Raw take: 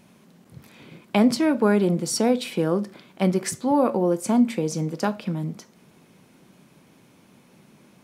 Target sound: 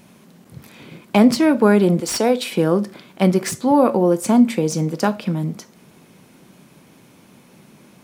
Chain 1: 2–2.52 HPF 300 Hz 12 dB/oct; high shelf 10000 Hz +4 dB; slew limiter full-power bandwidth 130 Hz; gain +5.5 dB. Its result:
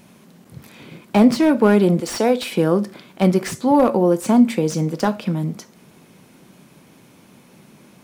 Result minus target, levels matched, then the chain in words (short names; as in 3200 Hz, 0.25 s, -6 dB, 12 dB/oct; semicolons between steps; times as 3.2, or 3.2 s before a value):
slew limiter: distortion +5 dB
2–2.52 HPF 300 Hz 12 dB/oct; high shelf 10000 Hz +4 dB; slew limiter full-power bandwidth 277.5 Hz; gain +5.5 dB